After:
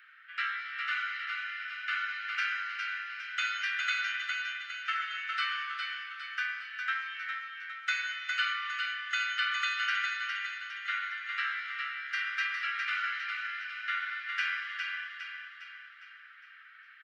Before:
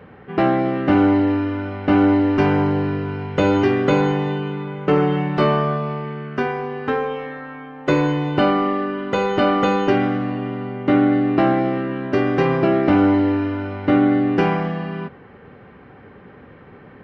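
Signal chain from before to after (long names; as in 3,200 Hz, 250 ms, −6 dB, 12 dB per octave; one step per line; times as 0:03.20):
Butterworth high-pass 1,300 Hz 96 dB per octave
on a send: repeating echo 408 ms, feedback 50%, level −5 dB
on the sum: level −2.5 dB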